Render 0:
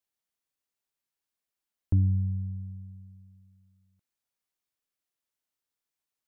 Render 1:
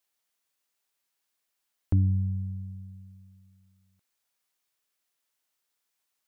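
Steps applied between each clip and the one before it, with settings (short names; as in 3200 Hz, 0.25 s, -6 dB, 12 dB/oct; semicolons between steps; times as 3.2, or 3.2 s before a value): low shelf 380 Hz -9 dB; gain +8.5 dB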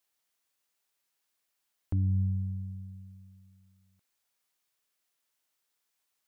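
limiter -22.5 dBFS, peak gain reduction 7 dB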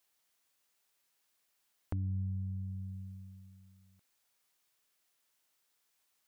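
compressor 2.5:1, threshold -42 dBFS, peak gain reduction 11 dB; gain +3 dB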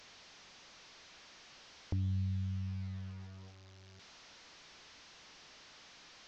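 delta modulation 32 kbps, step -51.5 dBFS; gain +1 dB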